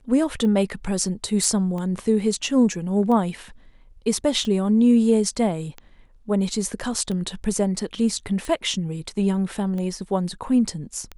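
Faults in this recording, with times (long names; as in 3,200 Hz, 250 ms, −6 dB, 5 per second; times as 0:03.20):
scratch tick 45 rpm −20 dBFS
0:01.44: drop-out 2.7 ms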